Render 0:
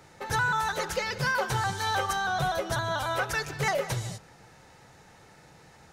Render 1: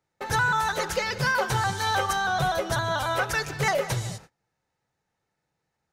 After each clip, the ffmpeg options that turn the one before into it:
ffmpeg -i in.wav -af "agate=range=-29dB:threshold=-47dB:ratio=16:detection=peak,volume=3dB" out.wav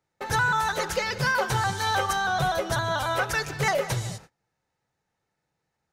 ffmpeg -i in.wav -af anull out.wav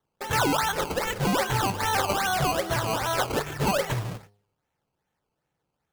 ffmpeg -i in.wav -af "bandreject=frequency=102:width_type=h:width=4,bandreject=frequency=204:width_type=h:width=4,bandreject=frequency=306:width_type=h:width=4,bandreject=frequency=408:width_type=h:width=4,bandreject=frequency=510:width_type=h:width=4,bandreject=frequency=612:width_type=h:width=4,bandreject=frequency=714:width_type=h:width=4,bandreject=frequency=816:width_type=h:width=4,bandreject=frequency=918:width_type=h:width=4,bandreject=frequency=1020:width_type=h:width=4,bandreject=frequency=1122:width_type=h:width=4,acrusher=samples=17:mix=1:aa=0.000001:lfo=1:lforange=17:lforate=2.5" out.wav

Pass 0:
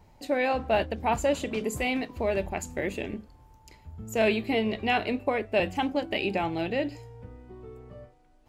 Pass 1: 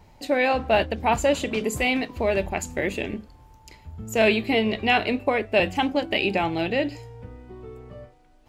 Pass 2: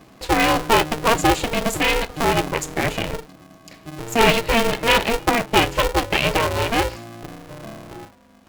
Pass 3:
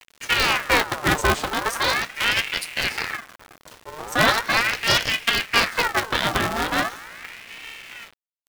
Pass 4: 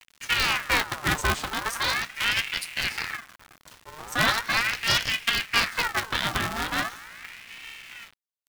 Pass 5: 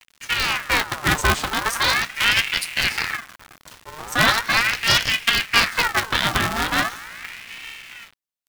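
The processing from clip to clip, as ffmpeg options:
ffmpeg -i in.wav -af "equalizer=frequency=3200:width_type=o:width=2:gain=3,volume=4dB" out.wav
ffmpeg -i in.wav -af "aeval=exprs='val(0)*sgn(sin(2*PI*230*n/s))':channel_layout=same,volume=4dB" out.wav
ffmpeg -i in.wav -af "acrusher=bits=6:mix=0:aa=0.000001,aeval=exprs='val(0)*sin(2*PI*1600*n/s+1600*0.55/0.39*sin(2*PI*0.39*n/s))':channel_layout=same" out.wav
ffmpeg -i in.wav -af "equalizer=frequency=480:width_type=o:width=1.6:gain=-7.5,volume=-3dB" out.wav
ffmpeg -i in.wav -af "dynaudnorm=framelen=140:gausssize=13:maxgain=6dB,volume=1.5dB" out.wav

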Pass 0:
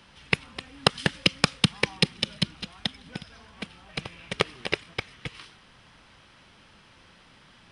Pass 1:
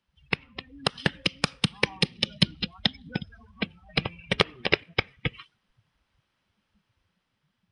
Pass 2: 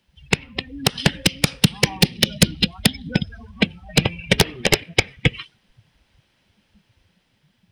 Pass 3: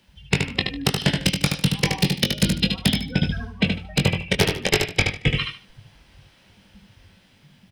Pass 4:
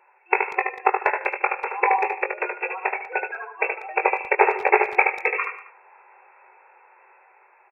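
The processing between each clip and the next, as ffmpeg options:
ffmpeg -i in.wav -af "afftdn=noise_reduction=29:noise_floor=-40,alimiter=limit=-11dB:level=0:latency=1:release=470,dynaudnorm=framelen=640:gausssize=5:maxgain=5dB,volume=3dB" out.wav
ffmpeg -i in.wav -af "aeval=exprs='0.708*sin(PI/2*3.16*val(0)/0.708)':channel_layout=same,equalizer=frequency=1200:width=2.1:gain=-8.5,volume=-1dB" out.wav
ffmpeg -i in.wav -filter_complex "[0:a]areverse,acompressor=threshold=-25dB:ratio=6,areverse,asplit=2[link_01][link_02];[link_02]adelay=21,volume=-7dB[link_03];[link_01][link_03]amix=inputs=2:normalize=0,aecho=1:1:75|150|225:0.562|0.124|0.0272,volume=7dB" out.wav
ffmpeg -i in.wav -filter_complex "[0:a]afftfilt=real='re*between(b*sr/4096,350,2700)':imag='im*between(b*sr/4096,350,2700)':win_size=4096:overlap=0.75,superequalizer=9b=3.55:10b=1.78,asplit=2[link_01][link_02];[link_02]adelay=190,highpass=300,lowpass=3400,asoftclip=type=hard:threshold=-14.5dB,volume=-17dB[link_03];[link_01][link_03]amix=inputs=2:normalize=0,volume=3.5dB" out.wav

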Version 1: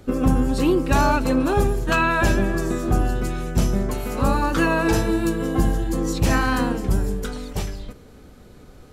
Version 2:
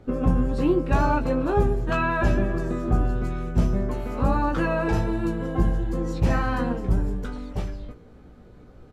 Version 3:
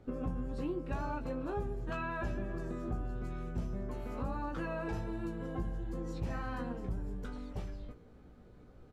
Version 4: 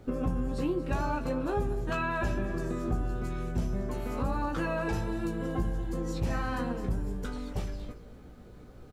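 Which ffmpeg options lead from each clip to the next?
ffmpeg -i in.wav -filter_complex "[0:a]lowpass=frequency=1400:poles=1,asplit=2[link_01][link_02];[link_02]adelay=17,volume=-6dB[link_03];[link_01][link_03]amix=inputs=2:normalize=0,volume=-3dB" out.wav
ffmpeg -i in.wav -af "acompressor=threshold=-28dB:ratio=2.5,volume=-8.5dB" out.wav
ffmpeg -i in.wav -af "highshelf=frequency=4500:gain=8,aecho=1:1:231:0.168,volume=6.5dB" out.wav

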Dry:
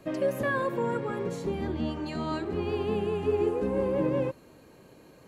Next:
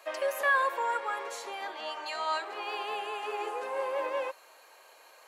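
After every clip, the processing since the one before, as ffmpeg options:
ffmpeg -i in.wav -af "highpass=frequency=700:width=0.5412,highpass=frequency=700:width=1.3066,volume=5.5dB" out.wav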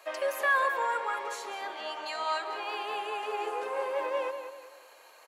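ffmpeg -i in.wav -filter_complex "[0:a]asplit=2[link_01][link_02];[link_02]adelay=190,lowpass=frequency=3800:poles=1,volume=-8dB,asplit=2[link_03][link_04];[link_04]adelay=190,lowpass=frequency=3800:poles=1,volume=0.39,asplit=2[link_05][link_06];[link_06]adelay=190,lowpass=frequency=3800:poles=1,volume=0.39,asplit=2[link_07][link_08];[link_08]adelay=190,lowpass=frequency=3800:poles=1,volume=0.39[link_09];[link_01][link_03][link_05][link_07][link_09]amix=inputs=5:normalize=0" out.wav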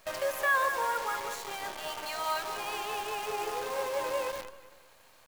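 ffmpeg -i in.wav -af "acrusher=bits=7:dc=4:mix=0:aa=0.000001,volume=-1dB" out.wav

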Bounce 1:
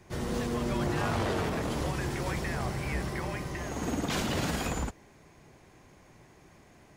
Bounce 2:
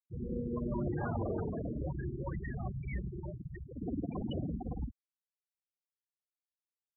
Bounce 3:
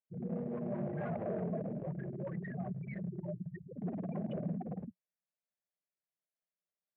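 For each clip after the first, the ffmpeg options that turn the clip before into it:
ffmpeg -i in.wav -af "afftfilt=real='re*gte(hypot(re,im),0.0891)':imag='im*gte(hypot(re,im),0.0891)':win_size=1024:overlap=0.75,volume=-3.5dB" out.wav
ffmpeg -i in.wav -af "aresample=16000,asoftclip=type=hard:threshold=-35dB,aresample=44100,highpass=frequency=140:width=0.5412,highpass=frequency=140:width=1.3066,equalizer=frequency=180:width_type=q:width=4:gain=10,equalizer=frequency=290:width_type=q:width=4:gain=-9,equalizer=frequency=620:width_type=q:width=4:gain=9,equalizer=frequency=940:width_type=q:width=4:gain=-8,equalizer=frequency=1300:width_type=q:width=4:gain=-6,lowpass=frequency=2200:width=0.5412,lowpass=frequency=2200:width=1.3066" out.wav

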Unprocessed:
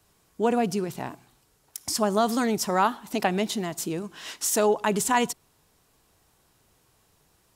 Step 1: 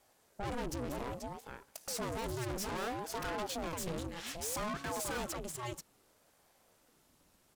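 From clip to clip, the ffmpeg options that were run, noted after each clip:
ffmpeg -i in.wav -af "aecho=1:1:484:0.299,aeval=exprs='(tanh(56.2*val(0)+0.6)-tanh(0.6))/56.2':channel_layout=same,aeval=exprs='val(0)*sin(2*PI*410*n/s+410*0.7/0.62*sin(2*PI*0.62*n/s))':channel_layout=same,volume=1dB" out.wav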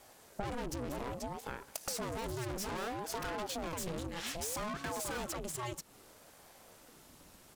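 ffmpeg -i in.wav -af "acompressor=threshold=-47dB:ratio=5,volume=10.5dB" out.wav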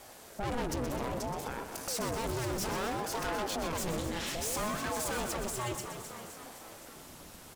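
ffmpeg -i in.wav -filter_complex "[0:a]asplit=2[link_01][link_02];[link_02]asplit=7[link_03][link_04][link_05][link_06][link_07][link_08][link_09];[link_03]adelay=258,afreqshift=51,volume=-13dB[link_10];[link_04]adelay=516,afreqshift=102,volume=-16.9dB[link_11];[link_05]adelay=774,afreqshift=153,volume=-20.8dB[link_12];[link_06]adelay=1032,afreqshift=204,volume=-24.6dB[link_13];[link_07]adelay=1290,afreqshift=255,volume=-28.5dB[link_14];[link_08]adelay=1548,afreqshift=306,volume=-32.4dB[link_15];[link_09]adelay=1806,afreqshift=357,volume=-36.3dB[link_16];[link_10][link_11][link_12][link_13][link_14][link_15][link_16]amix=inputs=7:normalize=0[link_17];[link_01][link_17]amix=inputs=2:normalize=0,alimiter=level_in=9.5dB:limit=-24dB:level=0:latency=1:release=23,volume=-9.5dB,asplit=2[link_18][link_19];[link_19]aecho=0:1:124|555:0.335|0.106[link_20];[link_18][link_20]amix=inputs=2:normalize=0,volume=7dB" out.wav

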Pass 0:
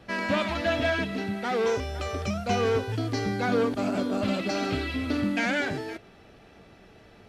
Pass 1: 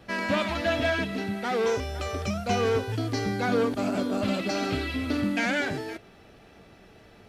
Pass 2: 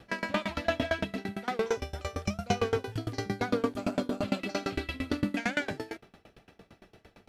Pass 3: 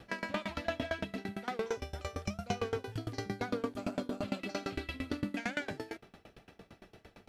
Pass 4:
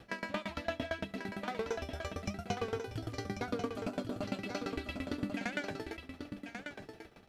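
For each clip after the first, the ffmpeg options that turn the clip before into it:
ffmpeg -i in.wav -af "highshelf=frequency=10000:gain=6.5" out.wav
ffmpeg -i in.wav -af "aeval=exprs='val(0)*pow(10,-25*if(lt(mod(8.8*n/s,1),2*abs(8.8)/1000),1-mod(8.8*n/s,1)/(2*abs(8.8)/1000),(mod(8.8*n/s,1)-2*abs(8.8)/1000)/(1-2*abs(8.8)/1000))/20)':channel_layout=same,volume=2.5dB" out.wav
ffmpeg -i in.wav -af "acompressor=threshold=-42dB:ratio=1.5" out.wav
ffmpeg -i in.wav -af "aecho=1:1:1091:0.447,volume=-1.5dB" out.wav

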